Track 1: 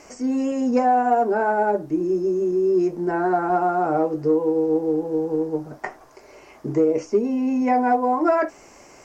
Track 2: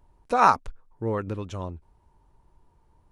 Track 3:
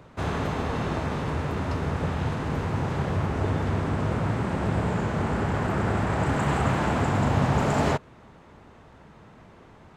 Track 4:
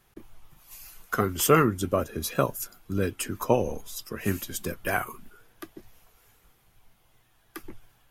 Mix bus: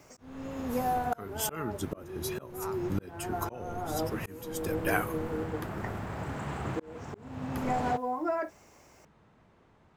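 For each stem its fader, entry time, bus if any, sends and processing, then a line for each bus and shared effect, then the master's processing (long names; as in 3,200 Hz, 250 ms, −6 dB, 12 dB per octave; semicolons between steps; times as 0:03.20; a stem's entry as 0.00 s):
−11.5 dB, 0.00 s, no send, Bessel high-pass filter 200 Hz, order 8; bit-depth reduction 10 bits, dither triangular
−18.5 dB, 2.20 s, no send, no processing
−12.0 dB, 0.00 s, no send, no processing
−2.0 dB, 0.00 s, no send, noise gate −53 dBFS, range −7 dB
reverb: not used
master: volume swells 531 ms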